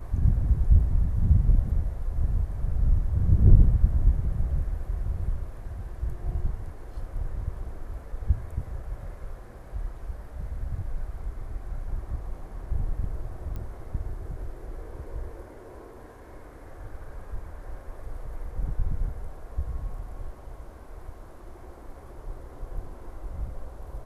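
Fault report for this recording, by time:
0:13.56: click −25 dBFS

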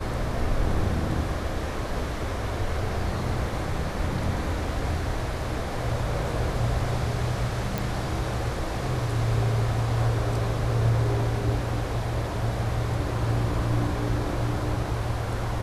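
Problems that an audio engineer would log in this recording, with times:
0:07.78: click

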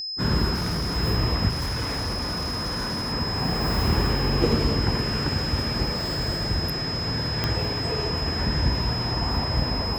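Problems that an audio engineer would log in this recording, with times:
whistle 5,100 Hz −29 dBFS
0:00.54–0:00.97: clipping −23 dBFS
0:01.49–0:03.13: clipping −24 dBFS
0:07.44: click −9 dBFS

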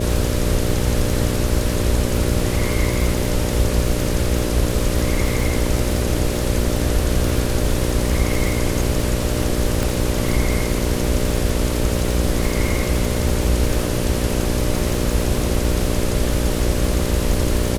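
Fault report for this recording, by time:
mains buzz 60 Hz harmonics 10 −23 dBFS
surface crackle 140 per second −23 dBFS
0:09.83: click

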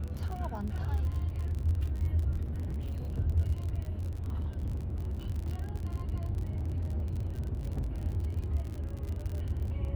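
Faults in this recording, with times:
surface crackle 49 per second −36 dBFS
0:02.42–0:03.20: clipping −32 dBFS
0:03.89–0:05.21: clipping −30.5 dBFS
0:06.49–0:08.02: clipping −29 dBFS

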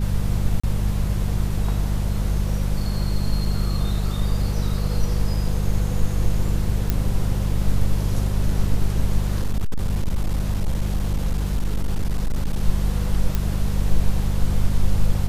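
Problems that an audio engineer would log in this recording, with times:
mains hum 50 Hz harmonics 4 −23 dBFS
0:00.60–0:00.64: drop-out 35 ms
0:06.90: click −7 dBFS
0:09.36–0:12.63: clipping −17 dBFS
0:13.35: click −9 dBFS

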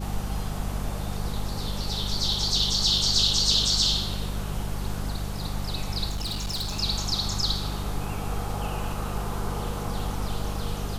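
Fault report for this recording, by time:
mains hum 50 Hz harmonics 4 −32 dBFS
0:06.09–0:06.80: clipping −26 dBFS

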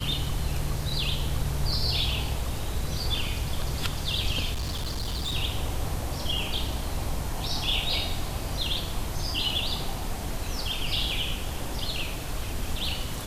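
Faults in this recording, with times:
0:04.53–0:05.34: clipping −26.5 dBFS

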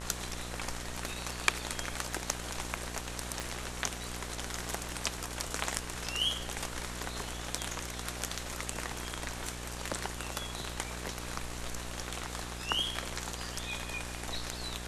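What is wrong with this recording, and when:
mains buzz 60 Hz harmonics 32 −43 dBFS
0:03.40: click −20 dBFS

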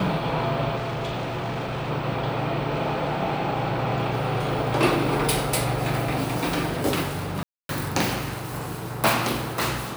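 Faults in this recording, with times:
0:00.75–0:01.91: clipping −25.5 dBFS
0:07.43–0:07.69: drop-out 262 ms

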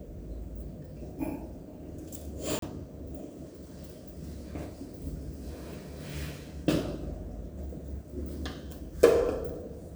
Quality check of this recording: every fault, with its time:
0:02.59–0:02.62: drop-out 33 ms

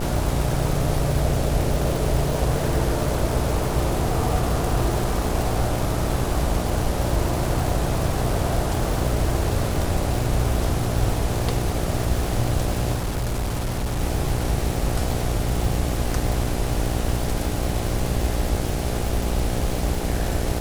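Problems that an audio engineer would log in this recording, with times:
mains buzz 60 Hz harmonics 14 −27 dBFS
surface crackle 420 per second −26 dBFS
0:12.95–0:14.01: clipping −21 dBFS

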